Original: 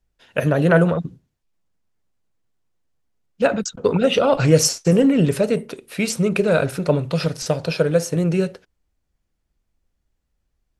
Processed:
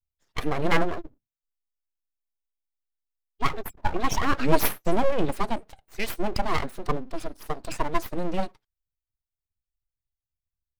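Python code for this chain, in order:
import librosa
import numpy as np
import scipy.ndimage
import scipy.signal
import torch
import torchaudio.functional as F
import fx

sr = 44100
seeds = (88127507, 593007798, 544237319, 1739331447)

y = fx.bin_expand(x, sr, power=1.5)
y = fx.peak_eq(y, sr, hz=3300.0, db=-8.5, octaves=2.9, at=(6.88, 7.64))
y = np.abs(y)
y = y * librosa.db_to_amplitude(-1.5)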